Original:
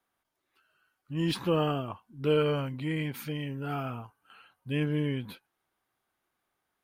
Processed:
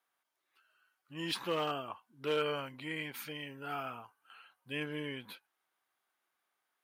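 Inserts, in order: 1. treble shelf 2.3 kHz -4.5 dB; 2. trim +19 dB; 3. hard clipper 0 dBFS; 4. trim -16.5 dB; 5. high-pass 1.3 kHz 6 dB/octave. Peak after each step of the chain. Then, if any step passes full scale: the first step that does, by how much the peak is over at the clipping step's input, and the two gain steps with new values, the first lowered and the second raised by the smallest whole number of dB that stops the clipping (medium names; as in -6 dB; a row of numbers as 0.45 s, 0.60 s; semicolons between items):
-15.5 dBFS, +3.5 dBFS, 0.0 dBFS, -16.5 dBFS, -19.5 dBFS; step 2, 3.5 dB; step 2 +15 dB, step 4 -12.5 dB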